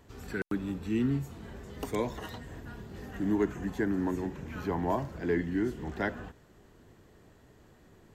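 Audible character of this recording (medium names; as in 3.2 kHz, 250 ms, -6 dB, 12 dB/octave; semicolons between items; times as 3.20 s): noise floor -60 dBFS; spectral tilt -5.0 dB/octave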